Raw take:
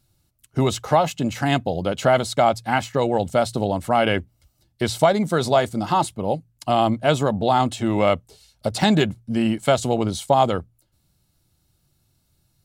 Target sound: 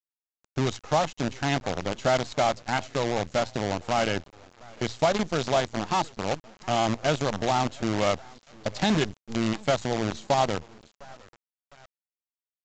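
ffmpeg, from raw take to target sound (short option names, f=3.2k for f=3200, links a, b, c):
-filter_complex "[0:a]asplit=2[a][b];[b]adelay=706,lowpass=f=3.6k:p=1,volume=-18.5dB,asplit=2[c][d];[d]adelay=706,lowpass=f=3.6k:p=1,volume=0.35,asplit=2[e][f];[f]adelay=706,lowpass=f=3.6k:p=1,volume=0.35[g];[a][c][e][g]amix=inputs=4:normalize=0,acrusher=bits=4:dc=4:mix=0:aa=0.000001,volume=-6.5dB" -ar 16000 -c:a pcm_mulaw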